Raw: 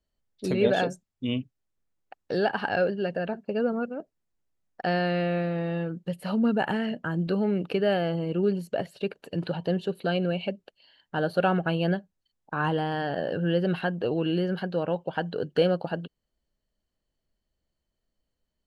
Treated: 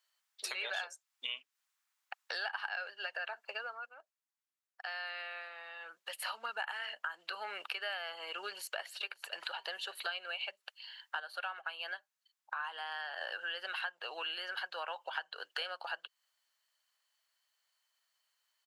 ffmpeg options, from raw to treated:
-filter_complex "[0:a]asplit=2[a][b];[b]afade=t=in:st=8.44:d=0.01,afade=t=out:st=8.93:d=0.01,aecho=0:1:560|1120|1680:0.125893|0.050357|0.0201428[c];[a][c]amix=inputs=2:normalize=0,asplit=5[d][e][f][g][h];[d]atrim=end=3.81,asetpts=PTS-STARTPTS,afade=t=out:st=3.42:d=0.39:silence=0.199526[i];[e]atrim=start=3.81:end=5.8,asetpts=PTS-STARTPTS,volume=-14dB[j];[f]atrim=start=5.8:end=11.202,asetpts=PTS-STARTPTS,afade=t=in:d=0.39:silence=0.199526[k];[g]atrim=start=11.198:end=13.212,asetpts=PTS-STARTPTS,volume=-7dB[l];[h]atrim=start=13.208[m];[i][j][k]concat=n=3:v=0:a=1[n];[n][l]acrossfade=d=0.004:c1=hsin:c2=hsin[o];[o][m]acrossfade=d=0.004:c1=hsin:c2=hsin,highpass=f=1k:w=0.5412,highpass=f=1k:w=1.3066,acompressor=threshold=-47dB:ratio=5,volume=9.5dB"

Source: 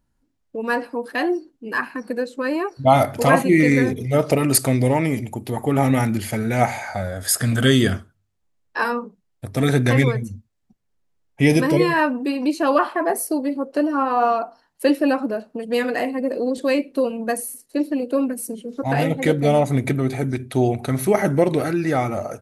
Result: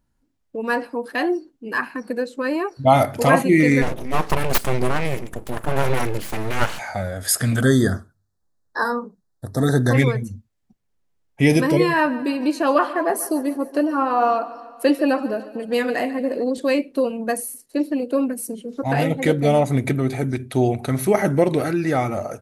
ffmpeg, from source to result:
-filter_complex "[0:a]asplit=3[a][b][c];[a]afade=t=out:st=3.81:d=0.02[d];[b]aeval=exprs='abs(val(0))':c=same,afade=t=in:st=3.81:d=0.02,afade=t=out:st=6.78:d=0.02[e];[c]afade=t=in:st=6.78:d=0.02[f];[d][e][f]amix=inputs=3:normalize=0,asplit=3[g][h][i];[g]afade=t=out:st=7.61:d=0.02[j];[h]asuperstop=centerf=2600:order=8:qfactor=1.4,afade=t=in:st=7.61:d=0.02,afade=t=out:st=9.93:d=0.02[k];[i]afade=t=in:st=9.93:d=0.02[l];[j][k][l]amix=inputs=3:normalize=0,asettb=1/sr,asplit=3[m][n][o];[m]atrim=end=11.904[p];[n]atrim=start=11.9:end=16.44,asetpts=PTS-STARTPTS,afade=t=in:d=0.004:c=qsin,afade=t=out:st=4.536:d=0.004:c=qsin,aecho=1:1:145|290|435|580|725:0.15|0.0868|0.0503|0.0292|0.0169,atrim=end_sample=200214[q];[o]atrim=start=16.436[r];[p][q]acrossfade=d=0.004:c1=hsin:c2=qsin[s];[s][r]acrossfade=d=0.004:c1=qsin:c2=hsin"

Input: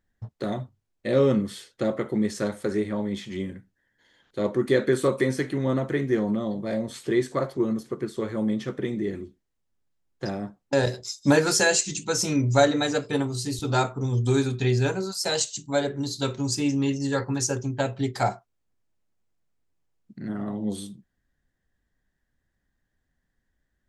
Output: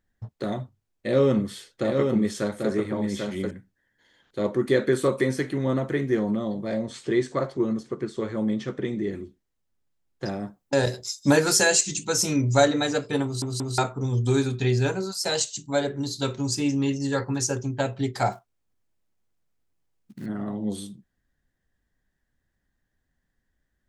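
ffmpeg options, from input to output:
-filter_complex "[0:a]asettb=1/sr,asplit=3[a][b][c];[a]atrim=end=0.564[d];[b]atrim=start=0.56:end=3.51,asetpts=PTS-STARTPTS,afade=t=in:d=0.004:c=qsin,afade=t=out:st=2.946:d=0.004:c=qsin,aecho=1:1:791:0.596,atrim=end_sample=130095[e];[c]atrim=start=3.506[f];[d][e]acrossfade=d=0.004:c1=hsin:c2=qsin[g];[g][f]acrossfade=d=0.004:c1=qsin:c2=hsin,asettb=1/sr,asplit=3[h][i][j];[h]atrim=end=6.674[k];[i]atrim=start=6.67:end=9.12,asetpts=PTS-STARTPTS,afade=t=in:d=0.004:c=qsin,afade=t=out:st=2.446:d=0.004:c=qsin,lowpass=f=8.4k:w=0.5412,lowpass=f=8.4k:w=1.3066[l];[j]atrim=start=9.116[m];[k][l]acrossfade=d=0.004:c1=hsin:c2=qsin[n];[n][m]acrossfade=d=0.004:c1=qsin:c2=hsin,asettb=1/sr,asplit=3[o][p][q];[o]atrim=end=10.404[r];[p]atrim=start=10.4:end=12.68,asetpts=PTS-STARTPTS,afade=t=in:d=0.004:c=qsin,afade=t=out:st=2.276:d=0.004:c=qsin,highshelf=f=10k:g=10[s];[q]atrim=start=12.676[t];[r][s]acrossfade=d=0.004:c1=hsin:c2=qsin[u];[u][t]acrossfade=d=0.004:c1=qsin:c2=hsin,asettb=1/sr,asplit=3[v][w][x];[v]atrim=end=18.324[y];[w]atrim=start=18.32:end=20.26,asetpts=PTS-STARTPTS,afade=t=in:d=0.004:c=qsin,afade=t=out:st=1.936:d=0.004:c=qsin,acrusher=bits=5:mode=log:mix=0:aa=0.000001[z];[x]atrim=start=20.256[aa];[y][z]acrossfade=d=0.004:c1=hsin:c2=qsin[ab];[ab][aa]acrossfade=d=0.004:c1=qsin:c2=hsin,asplit=4[ac][ad][ae][af];[ac]atrim=end=13.422[ag];[ad]atrim=start=13.238:end=13.422[ah];[ae]atrim=start=13.238:end=13.422[ai];[af]atrim=start=13.778[aj];[ag][ah]acrossfade=d=0.004:c1=hsin:c2=hsin[ak];[ak][ai]acrossfade=d=0.004:c1=hsin:c2=hsin[al];[al][aj]acrossfade=d=0.004:c1=hsin:c2=hsin"

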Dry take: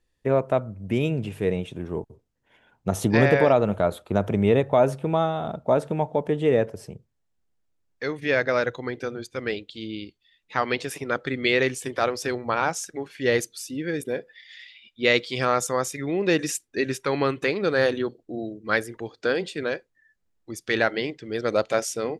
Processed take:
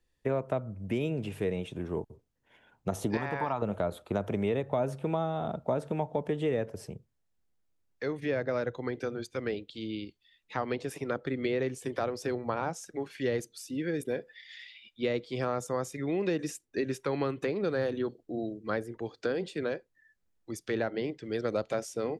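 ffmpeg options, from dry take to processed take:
-filter_complex "[0:a]asettb=1/sr,asplit=3[a][b][c];[a]atrim=end=3.174[d];[b]atrim=start=3.17:end=3.62,asetpts=PTS-STARTPTS,afade=t=in:d=0.004:c=qsin,afade=t=out:st=0.446:d=0.004:c=qsin,lowshelf=f=720:t=q:w=3:g=-8.5[e];[c]atrim=start=3.616[f];[d][e]acrossfade=d=0.004:c1=hsin:c2=qsin[g];[g][f]acrossfade=d=0.004:c1=qsin:c2=hsin,acrossover=split=250|1000[h][i][j];[h]acompressor=threshold=-33dB:ratio=4[k];[i]acompressor=threshold=-27dB:ratio=4[l];[j]acompressor=threshold=-40dB:ratio=4[m];[k][l][m]amix=inputs=3:normalize=0,volume=-2.5dB"

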